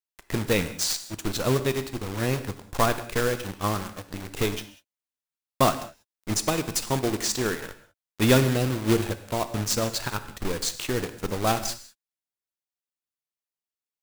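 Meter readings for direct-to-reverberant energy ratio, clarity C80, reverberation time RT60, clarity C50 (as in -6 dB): 10.5 dB, 14.0 dB, not exponential, 12.5 dB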